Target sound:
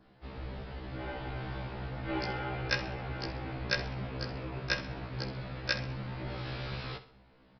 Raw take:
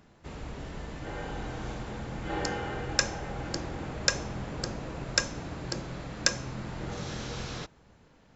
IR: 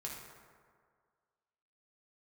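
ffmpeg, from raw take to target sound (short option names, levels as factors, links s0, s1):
-filter_complex "[0:a]adynamicequalizer=threshold=0.00251:dfrequency=2400:dqfactor=2.9:tfrequency=2400:tqfactor=2.9:attack=5:release=100:ratio=0.375:range=2:mode=boostabove:tftype=bell,atempo=1.1,aresample=11025,aresample=44100,asplit=2[s0][s1];[s1]aecho=0:1:65|130|195|260:0.2|0.0778|0.0303|0.0118[s2];[s0][s2]amix=inputs=2:normalize=0,afftfilt=real='re*1.73*eq(mod(b,3),0)':imag='im*1.73*eq(mod(b,3),0)':win_size=2048:overlap=0.75"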